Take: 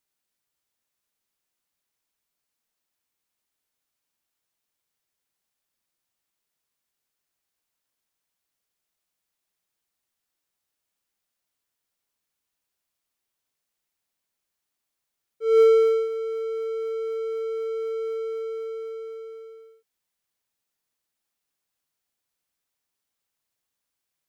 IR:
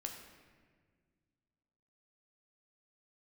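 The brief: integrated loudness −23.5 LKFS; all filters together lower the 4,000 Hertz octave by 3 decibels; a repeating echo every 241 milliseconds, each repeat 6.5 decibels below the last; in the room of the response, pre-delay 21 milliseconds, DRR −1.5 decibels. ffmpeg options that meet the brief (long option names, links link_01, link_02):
-filter_complex "[0:a]equalizer=frequency=4000:width_type=o:gain=-4,aecho=1:1:241|482|723|964|1205|1446:0.473|0.222|0.105|0.0491|0.0231|0.0109,asplit=2[link_01][link_02];[1:a]atrim=start_sample=2205,adelay=21[link_03];[link_02][link_03]afir=irnorm=-1:irlink=0,volume=3.5dB[link_04];[link_01][link_04]amix=inputs=2:normalize=0,volume=5dB"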